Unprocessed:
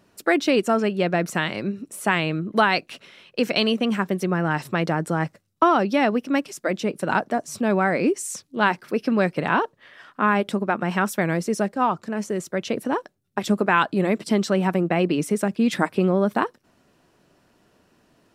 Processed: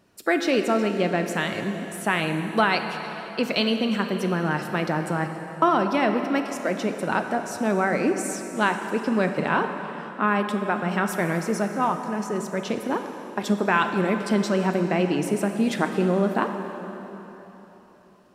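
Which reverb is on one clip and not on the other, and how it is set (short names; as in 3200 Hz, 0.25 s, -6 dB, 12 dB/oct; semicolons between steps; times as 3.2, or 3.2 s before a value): plate-style reverb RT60 3.8 s, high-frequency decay 0.8×, DRR 5.5 dB; gain -2.5 dB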